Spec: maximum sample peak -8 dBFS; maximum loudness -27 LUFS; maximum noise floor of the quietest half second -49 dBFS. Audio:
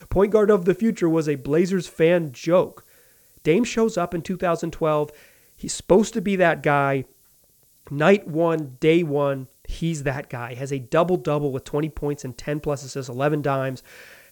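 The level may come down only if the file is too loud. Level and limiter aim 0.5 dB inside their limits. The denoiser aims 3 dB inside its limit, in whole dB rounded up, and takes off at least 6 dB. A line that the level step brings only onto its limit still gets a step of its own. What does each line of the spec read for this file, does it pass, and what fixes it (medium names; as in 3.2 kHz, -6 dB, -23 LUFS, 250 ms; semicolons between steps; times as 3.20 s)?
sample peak -4.0 dBFS: fail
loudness -22.5 LUFS: fail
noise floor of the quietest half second -58 dBFS: pass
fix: trim -5 dB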